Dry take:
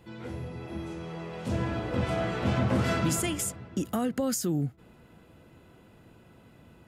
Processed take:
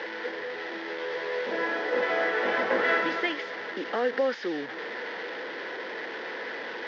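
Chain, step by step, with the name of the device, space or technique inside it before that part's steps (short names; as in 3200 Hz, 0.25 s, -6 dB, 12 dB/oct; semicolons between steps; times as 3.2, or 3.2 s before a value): digital answering machine (BPF 330–3300 Hz; delta modulation 32 kbps, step -36.5 dBFS; speaker cabinet 470–4100 Hz, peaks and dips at 470 Hz +6 dB, 670 Hz -6 dB, 1200 Hz -7 dB, 1800 Hz +10 dB, 2600 Hz -7 dB, 4000 Hz -4 dB); 0.87–1.46 doubler 14 ms -4 dB; gain +8 dB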